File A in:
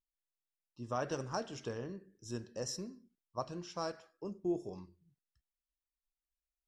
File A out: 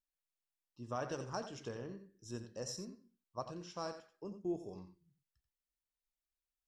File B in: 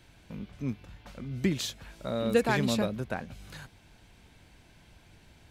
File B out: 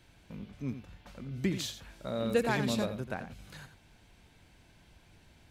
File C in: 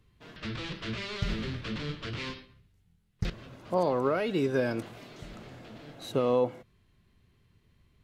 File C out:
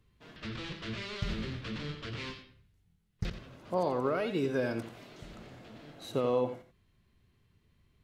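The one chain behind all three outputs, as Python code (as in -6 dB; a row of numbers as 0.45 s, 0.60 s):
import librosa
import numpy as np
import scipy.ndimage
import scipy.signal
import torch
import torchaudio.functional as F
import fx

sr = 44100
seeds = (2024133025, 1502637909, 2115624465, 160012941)

y = x + 10.0 ** (-10.5 / 20.0) * np.pad(x, (int(87 * sr / 1000.0), 0))[:len(x)]
y = y * 10.0 ** (-3.5 / 20.0)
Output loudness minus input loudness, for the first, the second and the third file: -3.5 LU, -3.5 LU, -3.5 LU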